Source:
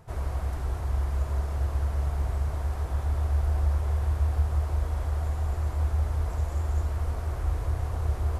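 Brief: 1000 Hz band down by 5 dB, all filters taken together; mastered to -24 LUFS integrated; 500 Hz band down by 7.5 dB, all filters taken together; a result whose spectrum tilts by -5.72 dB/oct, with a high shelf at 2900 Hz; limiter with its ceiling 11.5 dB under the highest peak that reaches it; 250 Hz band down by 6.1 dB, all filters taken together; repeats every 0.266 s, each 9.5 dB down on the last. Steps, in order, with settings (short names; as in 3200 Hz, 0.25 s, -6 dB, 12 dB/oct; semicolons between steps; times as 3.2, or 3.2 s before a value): bell 250 Hz -8.5 dB; bell 500 Hz -6.5 dB; bell 1000 Hz -4 dB; high shelf 2900 Hz +3 dB; limiter -27.5 dBFS; feedback echo 0.266 s, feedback 33%, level -9.5 dB; gain +11 dB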